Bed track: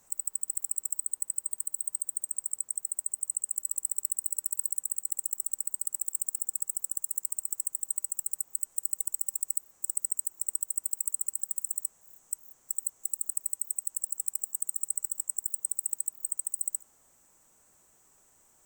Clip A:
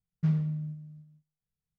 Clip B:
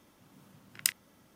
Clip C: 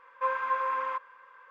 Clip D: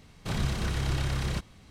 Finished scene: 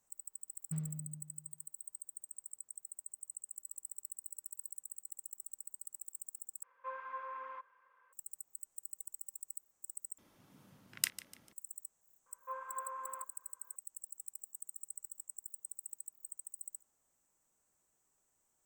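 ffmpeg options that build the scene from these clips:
-filter_complex "[3:a]asplit=2[a][b];[0:a]volume=-15.5dB[c];[a]lowpass=f=3k:p=1[d];[2:a]asplit=4[e][f][g][h];[f]adelay=148,afreqshift=44,volume=-16dB[i];[g]adelay=296,afreqshift=88,volume=-24.6dB[j];[h]adelay=444,afreqshift=132,volume=-33.3dB[k];[e][i][j][k]amix=inputs=4:normalize=0[l];[b]highshelf=f=1.6k:t=q:w=1.5:g=-6.5[m];[c]asplit=3[n][o][p];[n]atrim=end=6.634[q];[d]atrim=end=1.5,asetpts=PTS-STARTPTS,volume=-14.5dB[r];[o]atrim=start=8.126:end=10.184[s];[l]atrim=end=1.35,asetpts=PTS-STARTPTS,volume=-4.5dB[t];[p]atrim=start=11.526[u];[1:a]atrim=end=1.78,asetpts=PTS-STARTPTS,volume=-13.5dB,afade=t=in:d=0.004:c=hsin,afade=t=out:st=1.776:d=0.004:c=hsin,adelay=480[v];[m]atrim=end=1.5,asetpts=PTS-STARTPTS,volume=-16dB,afade=t=in:d=0.004:c=hsin,afade=t=out:st=1.496:d=0.004:c=hsin,adelay=12260[w];[q][r]acrossfade=d=0.004:c1=hsin:c2=hsin[x];[x][s]acrossfade=d=0.004:c1=hsin:c2=hsin[y];[y][t]acrossfade=d=0.004:c1=hsin:c2=hsin[z];[z][u]acrossfade=d=0.004:c1=hsin:c2=hsin[aa];[aa][v][w]amix=inputs=3:normalize=0"

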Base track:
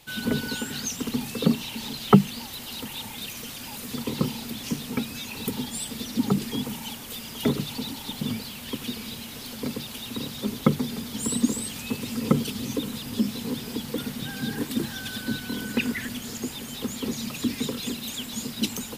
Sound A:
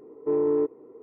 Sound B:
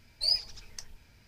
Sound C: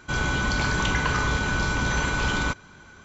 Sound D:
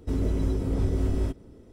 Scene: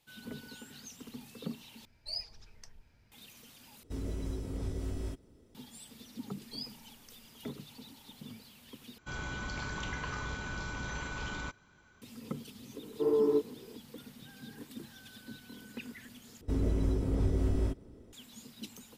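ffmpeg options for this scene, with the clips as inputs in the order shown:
-filter_complex "[2:a]asplit=2[a][b];[4:a]asplit=2[c][d];[0:a]volume=-18.5dB[e];[a]highshelf=f=2.1k:g=-7.5[f];[c]highshelf=f=2.3k:g=9[g];[1:a]flanger=delay=15.5:depth=5.5:speed=2.2[h];[e]asplit=5[i][j][k][l][m];[i]atrim=end=1.854[n];[f]atrim=end=1.27,asetpts=PTS-STARTPTS,volume=-5.5dB[o];[j]atrim=start=3.116:end=3.834[p];[g]atrim=end=1.72,asetpts=PTS-STARTPTS,volume=-11.5dB[q];[k]atrim=start=5.546:end=8.984[r];[3:a]atrim=end=3.04,asetpts=PTS-STARTPTS,volume=-14.5dB[s];[l]atrim=start=12.016:end=16.414[t];[d]atrim=end=1.72,asetpts=PTS-STARTPTS,volume=-4dB[u];[m]atrim=start=18.126[v];[b]atrim=end=1.27,asetpts=PTS-STARTPTS,volume=-16.5dB,afade=t=in:d=0.004:c=hsin,afade=t=out:st=1.266:d=0.004:c=hsin,adelay=6300[w];[h]atrim=end=1.02,asetpts=PTS-STARTPTS,volume=-1.5dB,afade=t=in:d=0.004:c=hsin,afade=t=out:st=1.016:d=0.004:c=hsin,adelay=12730[x];[n][o]acrossfade=d=0.004:c1=hsin:c2=hsin[y];[y][p]acrossfade=d=0.004:c1=hsin:c2=hsin[z];[z][q]acrossfade=d=0.004:c1=hsin:c2=hsin[aa];[aa][r]acrossfade=d=0.004:c1=hsin:c2=hsin[ab];[ab][s]acrossfade=d=0.004:c1=hsin:c2=hsin[ac];[ac][t]acrossfade=d=0.004:c1=hsin:c2=hsin[ad];[ad][u]acrossfade=d=0.004:c1=hsin:c2=hsin[ae];[ae][v]acrossfade=d=0.004:c1=hsin:c2=hsin[af];[af][w][x]amix=inputs=3:normalize=0"

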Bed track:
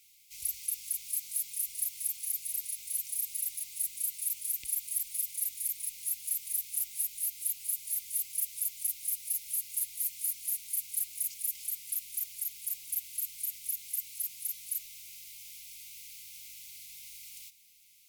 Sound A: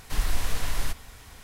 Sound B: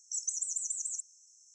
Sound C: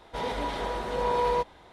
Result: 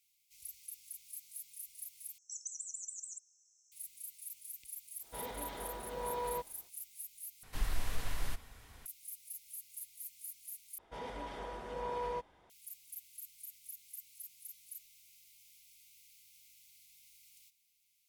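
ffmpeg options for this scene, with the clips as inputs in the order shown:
-filter_complex "[3:a]asplit=2[a][b];[0:a]volume=-14dB[c];[1:a]equalizer=f=6k:w=1:g=-3[d];[b]equalizer=f=4k:w=7.8:g=-10[e];[c]asplit=4[f][g][h][i];[f]atrim=end=2.184[j];[2:a]atrim=end=1.54,asetpts=PTS-STARTPTS,volume=-9.5dB[k];[g]atrim=start=3.716:end=7.434[l];[d]atrim=end=1.43,asetpts=PTS-STARTPTS,volume=-9dB[m];[h]atrim=start=8.856:end=10.784[n];[e]atrim=end=1.72,asetpts=PTS-STARTPTS,volume=-12.5dB[o];[i]atrim=start=12.496[p];[a]atrim=end=1.72,asetpts=PTS-STARTPTS,volume=-12.5dB,afade=t=in:d=0.1,afade=t=out:st=1.62:d=0.1,adelay=4990[q];[j][k]acrossfade=d=0.004:c1=hsin:c2=hsin[r];[r][l]acrossfade=d=0.004:c1=hsin:c2=hsin[s];[s][m]acrossfade=d=0.004:c1=hsin:c2=hsin[t];[t][n]acrossfade=d=0.004:c1=hsin:c2=hsin[u];[u][o]acrossfade=d=0.004:c1=hsin:c2=hsin[v];[v][p]acrossfade=d=0.004:c1=hsin:c2=hsin[w];[w][q]amix=inputs=2:normalize=0"

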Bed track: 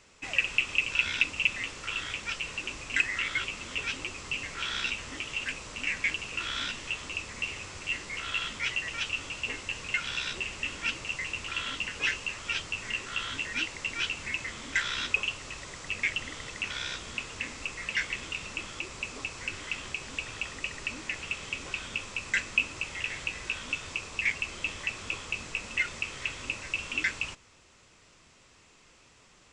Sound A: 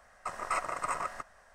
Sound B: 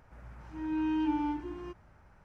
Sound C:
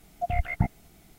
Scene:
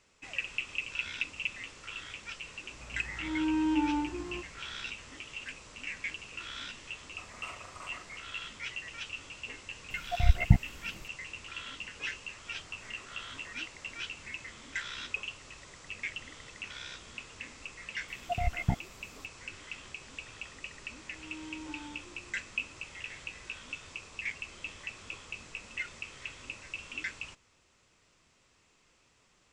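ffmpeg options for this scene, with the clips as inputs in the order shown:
-filter_complex "[2:a]asplit=2[a][b];[1:a]asplit=2[c][d];[3:a]asplit=2[e][f];[0:a]volume=-8.5dB[g];[a]acontrast=39[h];[c]asplit=2[i][j];[j]adelay=40,volume=-3dB[k];[i][k]amix=inputs=2:normalize=0[l];[e]aphaser=in_gain=1:out_gain=1:delay=1.2:decay=0.72:speed=1.9:type=triangular[m];[d]acompressor=threshold=-56dB:ratio=6:attack=3.2:release=140:knee=1:detection=peak[n];[h]atrim=end=2.24,asetpts=PTS-STARTPTS,volume=-4dB,afade=t=in:d=0.004:c=hsin,afade=t=out:st=2.236:d=0.004:c=hsin,adelay=2690[o];[l]atrim=end=1.54,asetpts=PTS-STARTPTS,volume=-16dB,afade=t=in:d=0.004:c=hsin,afade=t=out:st=1.536:d=0.004:c=hsin,adelay=6920[p];[m]atrim=end=1.18,asetpts=PTS-STARTPTS,volume=-4dB,afade=t=in:d=0.004:c=hsin,afade=t=out:st=1.176:d=0.004:c=hsin,adelay=9900[q];[n]atrim=end=1.54,asetpts=PTS-STARTPTS,volume=-0.5dB,afade=t=in:d=0.004:c=hsin,afade=t=out:st=1.536:d=0.004:c=hsin,adelay=12470[r];[f]atrim=end=1.18,asetpts=PTS-STARTPTS,volume=-4dB,afade=t=in:d=0.004:c=hsin,afade=t=out:st=1.176:d=0.004:c=hsin,adelay=18080[s];[b]atrim=end=2.24,asetpts=PTS-STARTPTS,volume=-14.5dB,afade=t=in:d=0.004:c=hsin,afade=t=out:st=2.236:d=0.004:c=hsin,adelay=20610[t];[g][o][p][q][r][s][t]amix=inputs=7:normalize=0"

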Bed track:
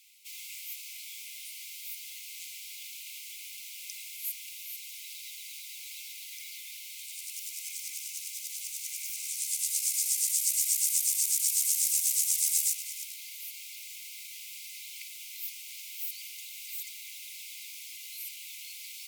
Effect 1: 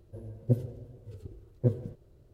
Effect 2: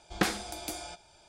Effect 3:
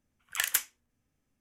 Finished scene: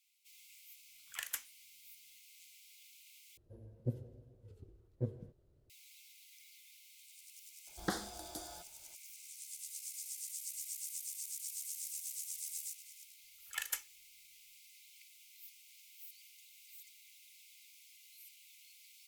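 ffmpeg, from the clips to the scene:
-filter_complex "[3:a]asplit=2[a][b];[0:a]volume=-16.5dB[c];[1:a]aresample=32000,aresample=44100[d];[2:a]asuperstop=centerf=2500:order=4:qfactor=1.7[e];[b]aecho=1:1:2.3:0.92[f];[c]asplit=2[g][h];[g]atrim=end=3.374[i];[d]atrim=end=2.33,asetpts=PTS-STARTPTS,volume=-11.5dB[j];[h]atrim=start=5.696[k];[a]atrim=end=1.4,asetpts=PTS-STARTPTS,volume=-13dB,afade=t=in:d=0.004:c=hsin,afade=t=out:st=1.396:d=0.004:c=hsin,adelay=790[l];[e]atrim=end=1.28,asetpts=PTS-STARTPTS,volume=-8.5dB,afade=t=in:d=0.004:c=hsin,afade=t=out:st=1.276:d=0.004:c=hsin,adelay=7670[m];[f]atrim=end=1.4,asetpts=PTS-STARTPTS,volume=-13.5dB,afade=t=in:d=0.004:c=hsin,afade=t=out:st=1.396:d=0.004:c=hsin,adelay=13180[n];[i][j]acrossfade=d=0.004:c1=hsin:c2=hsin[o];[o][k]acrossfade=d=0.004:c1=hsin:c2=hsin[p];[p][l][m][n]amix=inputs=4:normalize=0"

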